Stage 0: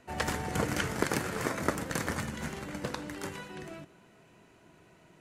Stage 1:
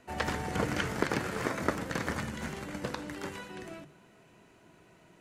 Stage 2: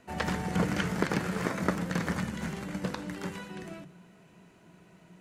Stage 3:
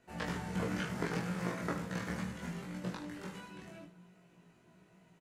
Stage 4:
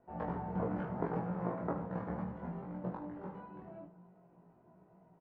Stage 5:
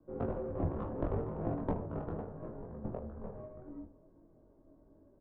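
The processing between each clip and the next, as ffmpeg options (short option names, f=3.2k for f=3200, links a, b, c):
-filter_complex "[0:a]acrossover=split=5500[a][b];[b]acompressor=threshold=-48dB:ratio=4:attack=1:release=60[c];[a][c]amix=inputs=2:normalize=0,bandreject=f=50:t=h:w=6,bandreject=f=100:t=h:w=6,bandreject=f=150:t=h:w=6"
-af "equalizer=f=180:t=o:w=0.27:g=13"
-filter_complex "[0:a]flanger=delay=22.5:depth=3.8:speed=0.72,asplit=2[a][b];[b]aecho=0:1:17|75:0.708|0.316[c];[a][c]amix=inputs=2:normalize=0,volume=-6dB"
-af "lowpass=f=840:t=q:w=2,volume=-1dB"
-filter_complex "[0:a]highpass=f=360:t=q:w=0.5412,highpass=f=360:t=q:w=1.307,lowpass=f=2.4k:t=q:w=0.5176,lowpass=f=2.4k:t=q:w=0.7071,lowpass=f=2.4k:t=q:w=1.932,afreqshift=-370,acrossover=split=140[a][b];[b]adynamicsmooth=sensitivity=3.5:basefreq=1.2k[c];[a][c]amix=inputs=2:normalize=0,volume=6dB"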